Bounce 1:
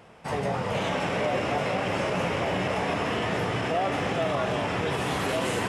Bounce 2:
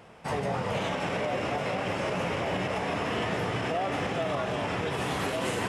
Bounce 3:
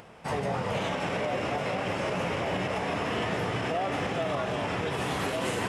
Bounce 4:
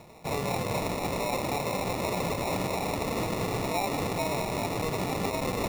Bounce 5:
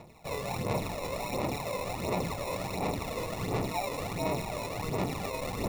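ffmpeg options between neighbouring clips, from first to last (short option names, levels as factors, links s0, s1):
-af "alimiter=limit=0.0944:level=0:latency=1:release=182"
-af "acompressor=mode=upward:threshold=0.00447:ratio=2.5"
-af "acrusher=samples=28:mix=1:aa=0.000001"
-af "aphaser=in_gain=1:out_gain=1:delay=2:decay=0.54:speed=1.4:type=sinusoidal,volume=0.501"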